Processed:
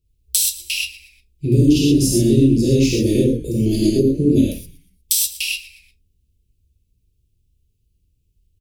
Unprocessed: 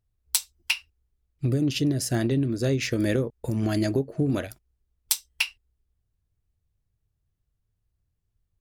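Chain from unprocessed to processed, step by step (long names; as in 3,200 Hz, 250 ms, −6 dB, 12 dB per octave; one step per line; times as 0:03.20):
dynamic equaliser 2,100 Hz, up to −7 dB, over −44 dBFS, Q 1.2
Chebyshev band-stop filter 460–2,600 Hz, order 3
echo with shifted repeats 119 ms, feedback 42%, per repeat −94 Hz, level −17.5 dB
reverb whose tail is shaped and stops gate 150 ms flat, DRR −6.5 dB
level +3.5 dB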